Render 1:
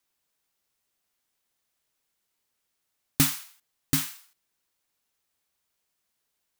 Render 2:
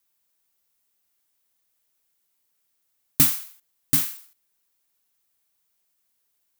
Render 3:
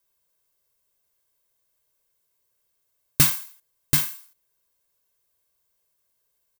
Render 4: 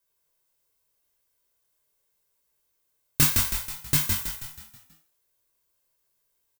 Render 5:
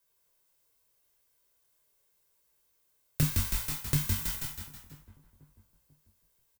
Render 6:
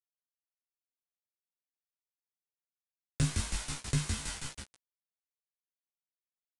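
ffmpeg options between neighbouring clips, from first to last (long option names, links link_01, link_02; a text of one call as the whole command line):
ffmpeg -i in.wav -af "highshelf=frequency=9800:gain=11,volume=-1dB" out.wav
ffmpeg -i in.wav -filter_complex "[0:a]aecho=1:1:1.9:0.62,asplit=2[link_01][link_02];[link_02]adynamicsmooth=sensitivity=5.5:basefreq=1500,volume=-0.5dB[link_03];[link_01][link_03]amix=inputs=2:normalize=0,volume=-2dB" out.wav
ffmpeg -i in.wav -filter_complex "[0:a]flanger=delay=4.2:depth=6.5:regen=87:speed=1.7:shape=triangular,asplit=2[link_01][link_02];[link_02]asplit=6[link_03][link_04][link_05][link_06][link_07][link_08];[link_03]adelay=161,afreqshift=-52,volume=-3.5dB[link_09];[link_04]adelay=322,afreqshift=-104,volume=-10.1dB[link_10];[link_05]adelay=483,afreqshift=-156,volume=-16.6dB[link_11];[link_06]adelay=644,afreqshift=-208,volume=-23.2dB[link_12];[link_07]adelay=805,afreqshift=-260,volume=-29.7dB[link_13];[link_08]adelay=966,afreqshift=-312,volume=-36.3dB[link_14];[link_09][link_10][link_11][link_12][link_13][link_14]amix=inputs=6:normalize=0[link_15];[link_01][link_15]amix=inputs=2:normalize=0,flanger=delay=18.5:depth=7.7:speed=0.79,volume=5.5dB" out.wav
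ffmpeg -i in.wav -filter_complex "[0:a]asplit=2[link_01][link_02];[link_02]adelay=492,lowpass=frequency=1000:poles=1,volume=-19.5dB,asplit=2[link_03][link_04];[link_04]adelay=492,lowpass=frequency=1000:poles=1,volume=0.49,asplit=2[link_05][link_06];[link_06]adelay=492,lowpass=frequency=1000:poles=1,volume=0.49,asplit=2[link_07][link_08];[link_08]adelay=492,lowpass=frequency=1000:poles=1,volume=0.49[link_09];[link_01][link_03][link_05][link_07][link_09]amix=inputs=5:normalize=0,acrossover=split=250[link_10][link_11];[link_11]acompressor=threshold=-30dB:ratio=10[link_12];[link_10][link_12]amix=inputs=2:normalize=0,aeval=exprs='0.237*sin(PI/2*1.58*val(0)/0.237)':channel_layout=same,volume=-6dB" out.wav
ffmpeg -i in.wav -filter_complex "[0:a]acrusher=bits=5:mix=0:aa=0.000001,asplit=2[link_01][link_02];[link_02]adelay=15,volume=-4.5dB[link_03];[link_01][link_03]amix=inputs=2:normalize=0,aresample=22050,aresample=44100,volume=-3dB" out.wav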